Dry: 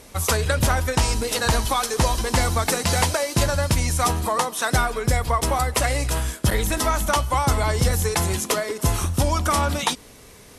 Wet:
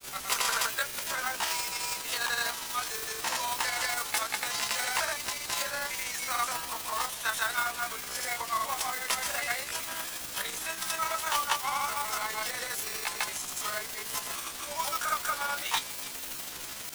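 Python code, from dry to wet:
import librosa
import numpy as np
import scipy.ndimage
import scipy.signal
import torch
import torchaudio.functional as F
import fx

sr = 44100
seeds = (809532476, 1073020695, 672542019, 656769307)

y = scipy.signal.sosfilt(scipy.signal.butter(2, 1300.0, 'highpass', fs=sr, output='sos'), x)
y = fx.high_shelf(y, sr, hz=2800.0, db=-6.5)
y = fx.quant_dither(y, sr, seeds[0], bits=6, dither='triangular')
y = fx.mod_noise(y, sr, seeds[1], snr_db=11)
y = fx.granulator(y, sr, seeds[2], grain_ms=100.0, per_s=20.0, spray_ms=100.0, spread_st=0)
y = fx.stretch_grains(y, sr, factor=1.6, grain_ms=82.0)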